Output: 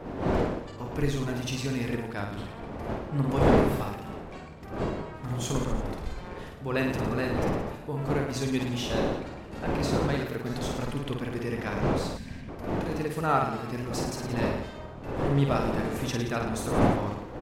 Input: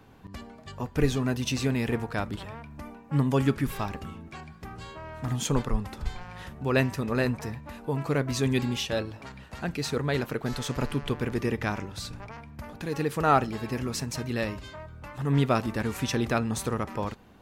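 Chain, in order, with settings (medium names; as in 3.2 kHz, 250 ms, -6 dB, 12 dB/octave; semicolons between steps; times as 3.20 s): wind noise 520 Hz -29 dBFS; reverse bouncing-ball echo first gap 50 ms, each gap 1.15×, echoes 5; time-frequency box 12.17–12.49 s, 270–1500 Hz -15 dB; trim -5 dB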